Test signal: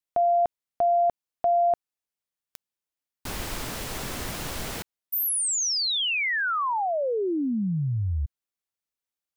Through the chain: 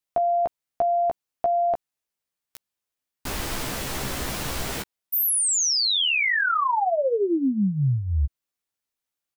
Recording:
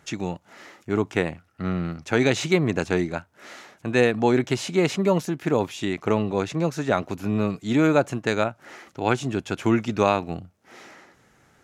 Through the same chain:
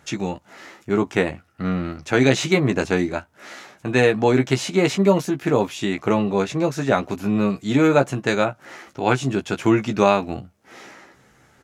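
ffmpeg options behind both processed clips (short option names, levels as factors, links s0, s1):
-filter_complex "[0:a]asplit=2[s0][s1];[s1]adelay=15,volume=0.531[s2];[s0][s2]amix=inputs=2:normalize=0,volume=1.33"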